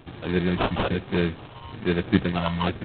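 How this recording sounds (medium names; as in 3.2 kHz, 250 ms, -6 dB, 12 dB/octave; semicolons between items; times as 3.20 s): phasing stages 4, 1.1 Hz, lowest notch 400–2700 Hz; aliases and images of a low sample rate 2 kHz, jitter 0%; G.726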